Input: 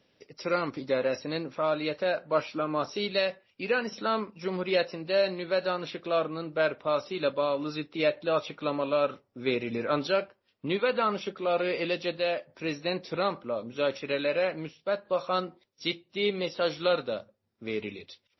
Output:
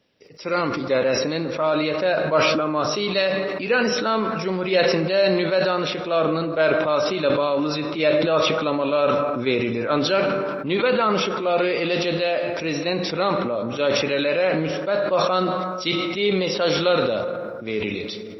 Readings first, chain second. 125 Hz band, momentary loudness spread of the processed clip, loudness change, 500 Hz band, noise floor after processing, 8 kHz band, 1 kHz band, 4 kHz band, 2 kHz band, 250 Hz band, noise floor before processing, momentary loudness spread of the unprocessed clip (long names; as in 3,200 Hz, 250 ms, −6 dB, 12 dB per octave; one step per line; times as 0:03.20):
+11.0 dB, 6 LU, +8.5 dB, +8.0 dB, −32 dBFS, can't be measured, +8.5 dB, +9.5 dB, +8.5 dB, +10.0 dB, −74 dBFS, 7 LU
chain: automatic gain control gain up to 5.5 dB
dense smooth reverb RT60 2.1 s, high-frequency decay 0.4×, DRR 13 dB
level that may fall only so fast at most 25 dB per second